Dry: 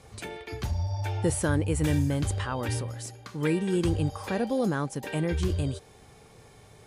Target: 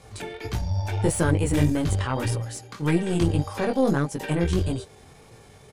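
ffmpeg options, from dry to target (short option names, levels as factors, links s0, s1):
-af "aeval=exprs='0.237*(cos(1*acos(clip(val(0)/0.237,-1,1)))-cos(1*PI/2))+0.0106*(cos(2*acos(clip(val(0)/0.237,-1,1)))-cos(2*PI/2))+0.0266*(cos(4*acos(clip(val(0)/0.237,-1,1)))-cos(4*PI/2))':c=same,flanger=delay=17.5:depth=5.8:speed=1.4,atempo=1.2,volume=2.11"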